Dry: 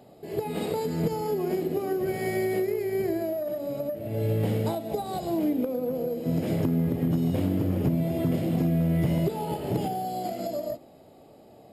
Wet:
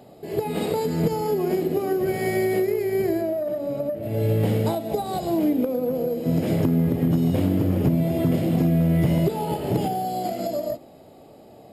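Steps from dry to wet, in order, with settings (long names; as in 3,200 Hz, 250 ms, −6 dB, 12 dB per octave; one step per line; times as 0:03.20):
0:03.21–0:04.03: high-shelf EQ 3,500 Hz −8 dB
level +4.5 dB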